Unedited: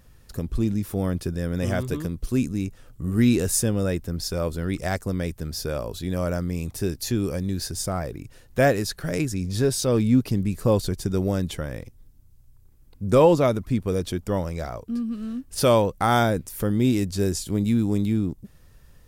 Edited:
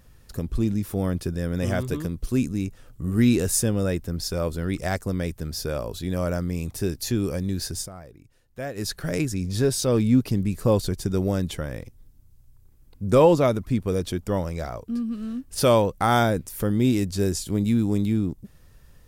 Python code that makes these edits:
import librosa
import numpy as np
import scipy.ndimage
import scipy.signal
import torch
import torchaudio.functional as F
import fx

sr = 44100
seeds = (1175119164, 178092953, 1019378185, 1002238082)

y = fx.edit(x, sr, fx.fade_down_up(start_s=7.75, length_s=1.14, db=-14.0, fade_s=0.14, curve='qsin'), tone=tone)